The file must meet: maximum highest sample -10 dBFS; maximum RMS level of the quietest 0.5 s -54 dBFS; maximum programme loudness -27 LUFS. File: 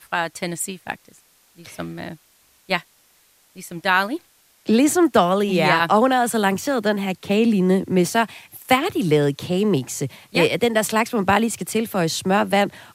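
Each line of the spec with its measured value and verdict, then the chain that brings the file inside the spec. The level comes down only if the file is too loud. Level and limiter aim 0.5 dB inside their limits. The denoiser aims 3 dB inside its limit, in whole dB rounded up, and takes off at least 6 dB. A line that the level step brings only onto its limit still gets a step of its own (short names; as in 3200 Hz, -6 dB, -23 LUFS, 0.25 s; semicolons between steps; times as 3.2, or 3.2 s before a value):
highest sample -3.5 dBFS: fail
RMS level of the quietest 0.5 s -58 dBFS: OK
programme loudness -20.0 LUFS: fail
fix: gain -7.5 dB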